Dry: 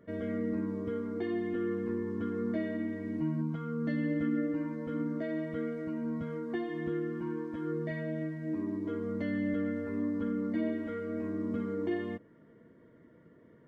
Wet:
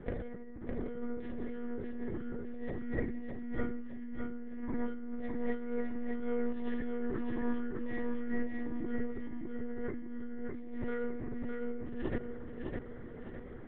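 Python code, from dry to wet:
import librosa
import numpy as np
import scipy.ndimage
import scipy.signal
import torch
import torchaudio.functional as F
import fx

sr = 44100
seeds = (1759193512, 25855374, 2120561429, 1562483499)

y = fx.lpc_monotone(x, sr, seeds[0], pitch_hz=240.0, order=10)
y = fx.over_compress(y, sr, threshold_db=-40.0, ratio=-0.5)
y = fx.echo_feedback(y, sr, ms=608, feedback_pct=38, wet_db=-4.0)
y = F.gain(torch.from_numpy(y), 2.5).numpy()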